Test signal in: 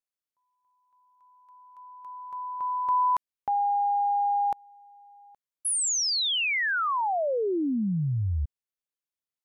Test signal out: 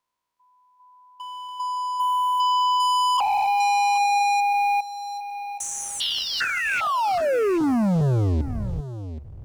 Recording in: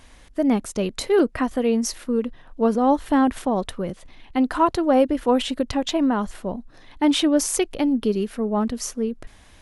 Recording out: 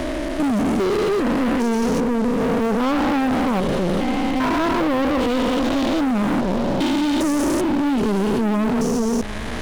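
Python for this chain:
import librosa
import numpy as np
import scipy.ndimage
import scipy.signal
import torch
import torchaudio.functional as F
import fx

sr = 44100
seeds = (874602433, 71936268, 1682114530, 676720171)

p1 = fx.spec_steps(x, sr, hold_ms=400)
p2 = fx.lowpass(p1, sr, hz=3800.0, slope=6)
p3 = fx.leveller(p2, sr, passes=3)
p4 = fx.over_compress(p3, sr, threshold_db=-25.0, ratio=-1.0)
p5 = p3 + F.gain(torch.from_numpy(p4), -2.0).numpy()
p6 = 10.0 ** (-20.0 / 20.0) * np.tanh(p5 / 10.0 ** (-20.0 / 20.0))
p7 = p6 + 10.0 ** (-17.0 / 20.0) * np.pad(p6, (int(773 * sr / 1000.0), 0))[:len(p6)]
p8 = fx.band_squash(p7, sr, depth_pct=40)
y = F.gain(torch.from_numpy(p8), 2.5).numpy()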